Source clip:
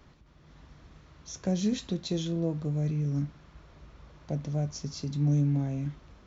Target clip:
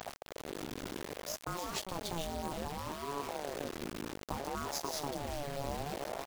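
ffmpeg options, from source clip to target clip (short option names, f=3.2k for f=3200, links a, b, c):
-filter_complex "[0:a]areverse,acompressor=threshold=-39dB:ratio=20,areverse,asplit=2[a][b];[b]adelay=396,lowpass=f=2.1k:p=1,volume=-12.5dB,asplit=2[c][d];[d]adelay=396,lowpass=f=2.1k:p=1,volume=0.36,asplit=2[e][f];[f]adelay=396,lowpass=f=2.1k:p=1,volume=0.36,asplit=2[g][h];[h]adelay=396,lowpass=f=2.1k:p=1,volume=0.36[i];[a][c][e][g][i]amix=inputs=5:normalize=0,acrusher=bits=6:dc=4:mix=0:aa=0.000001,afftfilt=real='re*lt(hypot(re,im),0.0355)':imag='im*lt(hypot(re,im),0.0355)':win_size=1024:overlap=0.75,aeval=exprs='val(0)*sin(2*PI*490*n/s+490*0.45/0.63*sin(2*PI*0.63*n/s))':c=same,volume=15.5dB"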